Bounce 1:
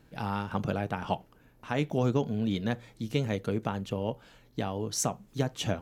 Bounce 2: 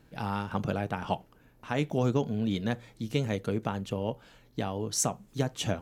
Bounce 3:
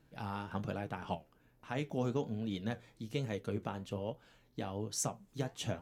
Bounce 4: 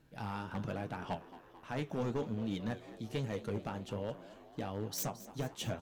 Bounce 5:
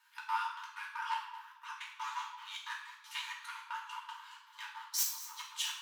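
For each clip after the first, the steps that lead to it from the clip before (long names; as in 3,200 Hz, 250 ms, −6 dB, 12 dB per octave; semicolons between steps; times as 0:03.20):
dynamic equaliser 8,500 Hz, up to +4 dB, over −56 dBFS, Q 1.4
flanger 1.2 Hz, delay 5.8 ms, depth 7.7 ms, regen +68%; level −3.5 dB
phase distortion by the signal itself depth 0.071 ms; hard clipping −31 dBFS, distortion −12 dB; echo with shifted repeats 220 ms, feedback 62%, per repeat +77 Hz, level −16 dB; level +1 dB
gate pattern "xx.xx.x.x.x" 158 BPM −24 dB; linear-phase brick-wall high-pass 860 Hz; convolution reverb RT60 0.90 s, pre-delay 3 ms, DRR −4.5 dB; level +3 dB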